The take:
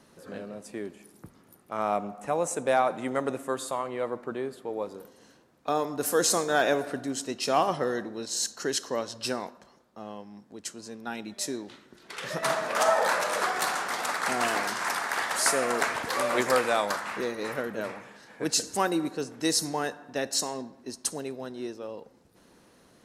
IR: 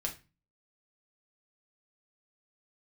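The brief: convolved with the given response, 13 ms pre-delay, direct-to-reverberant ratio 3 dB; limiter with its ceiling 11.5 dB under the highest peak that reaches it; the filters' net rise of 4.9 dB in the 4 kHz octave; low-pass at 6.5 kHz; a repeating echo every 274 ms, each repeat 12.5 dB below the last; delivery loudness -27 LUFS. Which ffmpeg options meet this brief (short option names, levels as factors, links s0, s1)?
-filter_complex "[0:a]lowpass=6500,equalizer=f=4000:t=o:g=7,alimiter=limit=0.0891:level=0:latency=1,aecho=1:1:274|548|822:0.237|0.0569|0.0137,asplit=2[s0][s1];[1:a]atrim=start_sample=2205,adelay=13[s2];[s1][s2]afir=irnorm=-1:irlink=0,volume=0.596[s3];[s0][s3]amix=inputs=2:normalize=0,volume=1.5"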